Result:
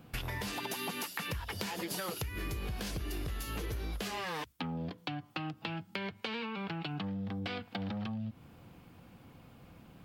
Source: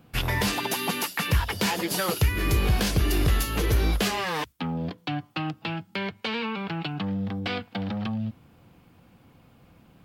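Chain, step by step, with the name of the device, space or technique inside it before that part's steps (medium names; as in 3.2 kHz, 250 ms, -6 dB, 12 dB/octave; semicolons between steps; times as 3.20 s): serial compression, peaks first (compression, threshold -30 dBFS, peak gain reduction 12.5 dB; compression 2:1, threshold -38 dBFS, peak gain reduction 6 dB)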